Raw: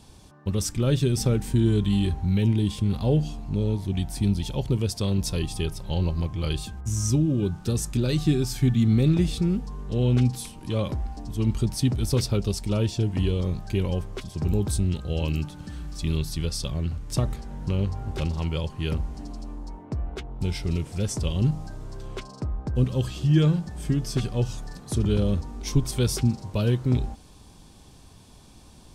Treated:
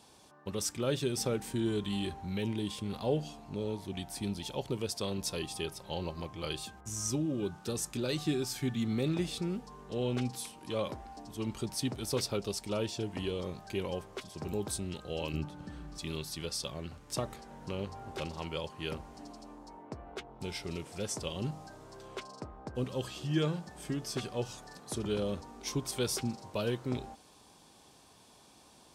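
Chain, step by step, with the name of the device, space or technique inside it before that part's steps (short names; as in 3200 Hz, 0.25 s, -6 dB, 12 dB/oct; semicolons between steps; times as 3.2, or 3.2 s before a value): 15.33–15.98 tilt -2.5 dB/oct; filter by subtraction (in parallel: LPF 660 Hz 12 dB/oct + phase invert); on the sum: gain -4.5 dB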